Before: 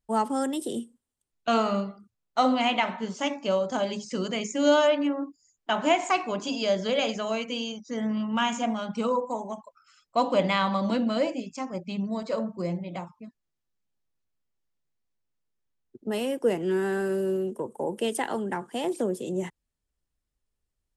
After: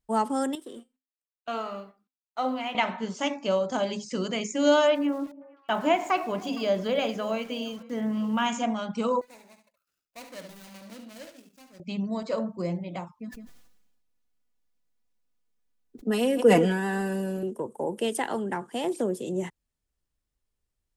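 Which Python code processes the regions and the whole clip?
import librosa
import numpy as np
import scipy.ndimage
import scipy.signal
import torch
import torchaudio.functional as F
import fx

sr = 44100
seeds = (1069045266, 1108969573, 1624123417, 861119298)

y = fx.chain(x, sr, fx.law_mismatch(coded='A'),
    fx.bass_treble(bass_db=-10, treble_db=-7),
    fx.comb_fb(f0_hz=260.0, decay_s=0.24, harmonics='all', damping=0.0, mix_pct=60), at=(0.55, 2.75))
y = fx.chain(y, sr, fx.high_shelf(hz=3800.0, db=-10.5),
    fx.sample_gate(floor_db=-46.5),
    fx.echo_stepped(ms=154, hz=200.0, octaves=1.4, feedback_pct=70, wet_db=-12.0), at=(4.95, 8.46))
y = fx.chain(y, sr, fx.median_filter(points=41),
    fx.pre_emphasis(coefficient=0.9),
    fx.echo_feedback(ms=70, feedback_pct=15, wet_db=-9.0), at=(9.21, 11.8))
y = fx.chain(y, sr, fx.comb(ms=4.1, depth=0.84),
    fx.echo_single(ms=160, db=-19.5),
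    fx.sustainer(db_per_s=45.0), at=(13.19, 17.43))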